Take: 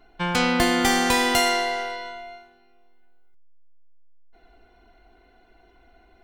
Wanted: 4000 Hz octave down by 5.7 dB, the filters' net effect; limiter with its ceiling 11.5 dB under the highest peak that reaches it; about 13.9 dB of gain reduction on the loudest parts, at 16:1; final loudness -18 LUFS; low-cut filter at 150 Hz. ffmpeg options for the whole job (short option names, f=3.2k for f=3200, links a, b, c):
-af "highpass=150,equalizer=f=4k:t=o:g=-7.5,acompressor=threshold=-31dB:ratio=16,volume=21dB,alimiter=limit=-10dB:level=0:latency=1"